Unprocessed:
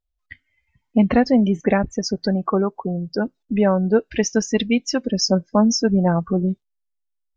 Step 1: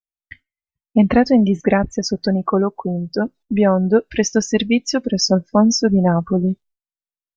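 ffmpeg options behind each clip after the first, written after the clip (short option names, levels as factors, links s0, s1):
-af "agate=range=0.0224:threshold=0.00708:ratio=3:detection=peak,volume=1.33"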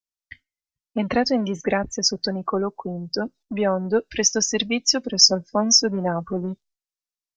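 -filter_complex "[0:a]equalizer=f=5500:w=0.96:g=11,acrossover=split=260|940[s0][s1][s2];[s0]asoftclip=type=tanh:threshold=0.0531[s3];[s3][s1][s2]amix=inputs=3:normalize=0,volume=0.562"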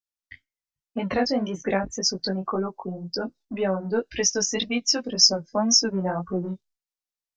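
-af "flanger=delay=16:depth=5.5:speed=1.9"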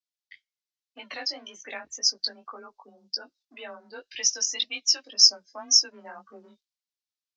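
-af "afreqshift=25,bandpass=f=4200:t=q:w=1.3:csg=0,volume=1.33"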